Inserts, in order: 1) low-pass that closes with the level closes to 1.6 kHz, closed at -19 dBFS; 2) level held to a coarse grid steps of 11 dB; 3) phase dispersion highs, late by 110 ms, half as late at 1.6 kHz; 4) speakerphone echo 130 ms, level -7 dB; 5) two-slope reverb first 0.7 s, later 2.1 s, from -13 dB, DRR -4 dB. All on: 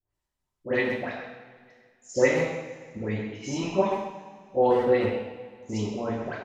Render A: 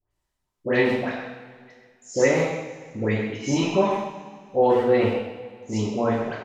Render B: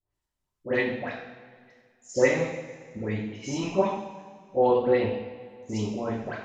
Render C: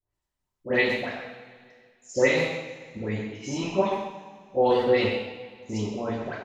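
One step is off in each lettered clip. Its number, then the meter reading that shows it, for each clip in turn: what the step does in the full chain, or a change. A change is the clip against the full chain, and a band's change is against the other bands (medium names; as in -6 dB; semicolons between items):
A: 2, crest factor change -2.0 dB; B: 4, momentary loudness spread change +2 LU; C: 1, 4 kHz band +6.5 dB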